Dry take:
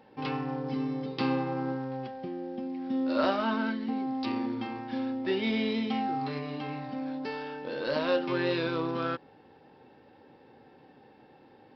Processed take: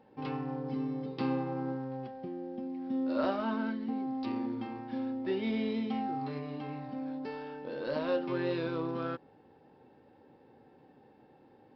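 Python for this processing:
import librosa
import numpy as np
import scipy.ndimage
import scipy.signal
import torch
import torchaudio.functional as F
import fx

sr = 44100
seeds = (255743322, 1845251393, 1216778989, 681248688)

y = fx.tilt_shelf(x, sr, db=4.0, hz=1300.0)
y = F.gain(torch.from_numpy(y), -6.5).numpy()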